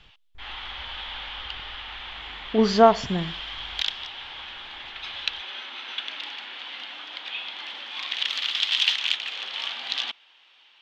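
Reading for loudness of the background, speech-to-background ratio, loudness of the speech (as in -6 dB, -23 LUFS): -29.5 LUFS, 8.5 dB, -21.0 LUFS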